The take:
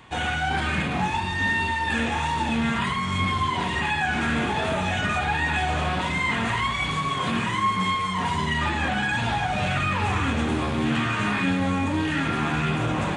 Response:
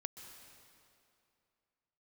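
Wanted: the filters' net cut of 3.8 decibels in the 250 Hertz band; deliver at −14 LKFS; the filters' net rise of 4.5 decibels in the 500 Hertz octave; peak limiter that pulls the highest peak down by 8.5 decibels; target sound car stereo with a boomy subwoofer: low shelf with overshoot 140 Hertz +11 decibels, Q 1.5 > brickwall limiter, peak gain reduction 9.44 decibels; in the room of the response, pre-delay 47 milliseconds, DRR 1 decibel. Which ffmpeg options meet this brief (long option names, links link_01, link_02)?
-filter_complex "[0:a]equalizer=frequency=250:width_type=o:gain=-6,equalizer=frequency=500:width_type=o:gain=8.5,alimiter=limit=-20dB:level=0:latency=1,asplit=2[link_01][link_02];[1:a]atrim=start_sample=2205,adelay=47[link_03];[link_02][link_03]afir=irnorm=-1:irlink=0,volume=2dB[link_04];[link_01][link_04]amix=inputs=2:normalize=0,lowshelf=frequency=140:width_type=q:width=1.5:gain=11,volume=12dB,alimiter=limit=-5.5dB:level=0:latency=1"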